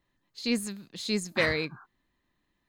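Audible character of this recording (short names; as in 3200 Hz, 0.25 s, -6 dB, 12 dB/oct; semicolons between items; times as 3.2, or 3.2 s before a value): noise floor -78 dBFS; spectral tilt -3.5 dB/oct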